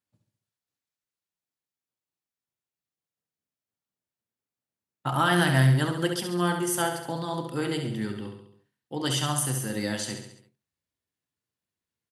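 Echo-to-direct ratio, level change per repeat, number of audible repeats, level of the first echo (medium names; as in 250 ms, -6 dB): -5.5 dB, -5.5 dB, 5, -7.0 dB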